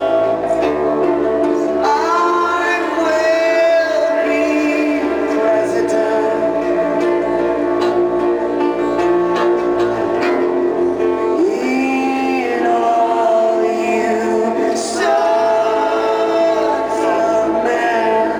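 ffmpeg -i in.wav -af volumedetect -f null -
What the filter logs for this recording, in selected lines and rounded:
mean_volume: -15.0 dB
max_volume: -3.4 dB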